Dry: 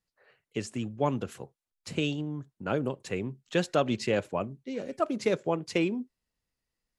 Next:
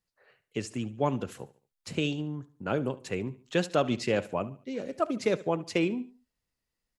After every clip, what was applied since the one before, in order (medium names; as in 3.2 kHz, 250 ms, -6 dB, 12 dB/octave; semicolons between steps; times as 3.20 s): feedback delay 72 ms, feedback 37%, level -18 dB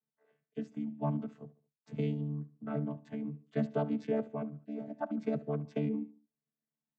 vocoder on a held chord bare fifth, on D3; treble shelf 3.4 kHz -11 dB; trim -4 dB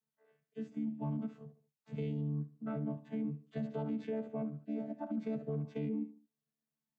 harmonic-percussive split percussive -16 dB; peak limiter -32 dBFS, peak gain reduction 9 dB; trim +2.5 dB